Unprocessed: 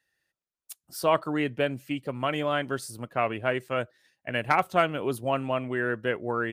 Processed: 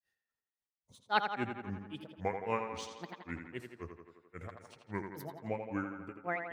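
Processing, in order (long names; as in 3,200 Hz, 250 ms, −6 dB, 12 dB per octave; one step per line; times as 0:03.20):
granular cloud 192 ms, grains 3.7 per second, spray 33 ms, pitch spread up and down by 7 semitones
dynamic equaliser 4,000 Hz, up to +5 dB, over −55 dBFS, Q 1.3
tape delay 84 ms, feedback 71%, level −6 dB, low-pass 4,300 Hz
level −5 dB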